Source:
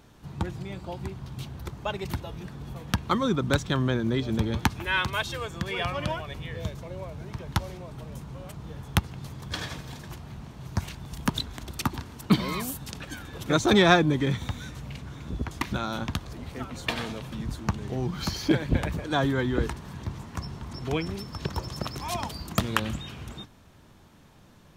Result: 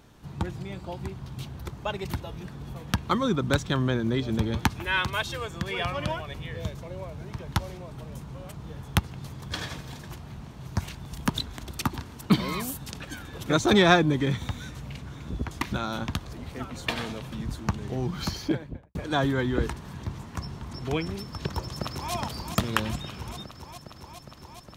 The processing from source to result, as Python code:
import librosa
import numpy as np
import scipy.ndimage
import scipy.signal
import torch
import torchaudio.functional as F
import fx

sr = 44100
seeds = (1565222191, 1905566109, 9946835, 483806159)

y = fx.studio_fade_out(x, sr, start_s=18.21, length_s=0.74)
y = fx.echo_throw(y, sr, start_s=21.48, length_s=0.65, ms=410, feedback_pct=85, wet_db=-7.5)